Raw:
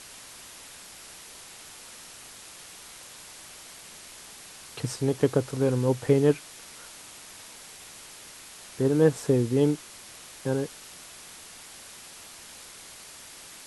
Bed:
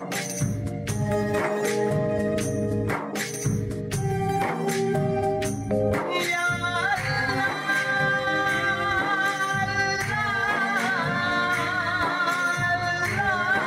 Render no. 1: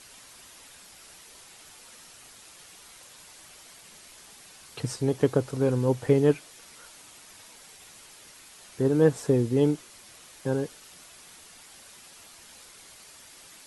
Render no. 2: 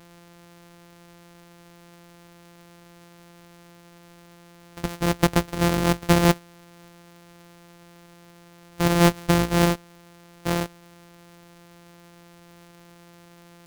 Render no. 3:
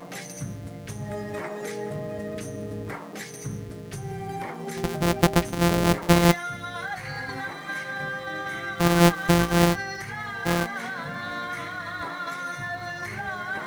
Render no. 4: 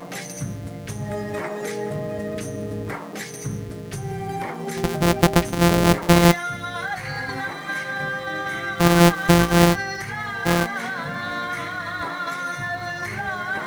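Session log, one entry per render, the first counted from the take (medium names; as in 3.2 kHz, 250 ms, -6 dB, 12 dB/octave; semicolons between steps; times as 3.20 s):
noise reduction 6 dB, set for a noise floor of -47 dBFS
sorted samples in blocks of 256 samples; in parallel at -7 dB: crossover distortion -35 dBFS
add bed -8.5 dB
trim +4.5 dB; peak limiter -3 dBFS, peak gain reduction 2.5 dB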